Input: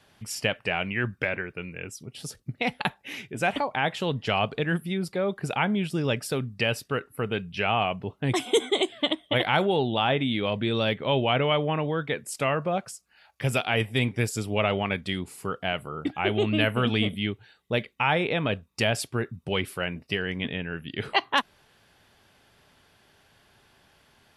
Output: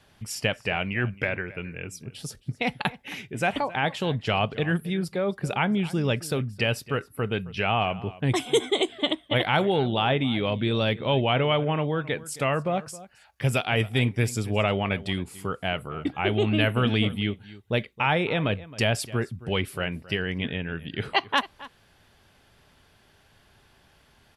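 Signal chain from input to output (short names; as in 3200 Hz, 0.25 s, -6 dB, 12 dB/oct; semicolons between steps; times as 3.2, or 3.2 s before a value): low shelf 86 Hz +9.5 dB; outdoor echo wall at 46 m, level -18 dB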